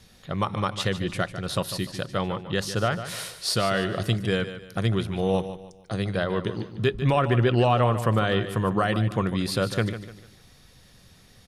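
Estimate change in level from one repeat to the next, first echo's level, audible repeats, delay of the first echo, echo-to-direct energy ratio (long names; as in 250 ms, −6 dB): −9.0 dB, −11.5 dB, 3, 149 ms, −11.0 dB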